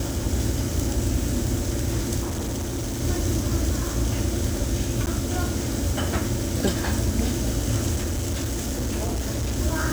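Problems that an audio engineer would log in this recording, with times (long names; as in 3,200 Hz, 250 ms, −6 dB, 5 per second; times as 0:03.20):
0:02.22–0:03.01: clipping −24.5 dBFS
0:05.06–0:05.07: drop-out 9.9 ms
0:07.95–0:09.58: clipping −22.5 dBFS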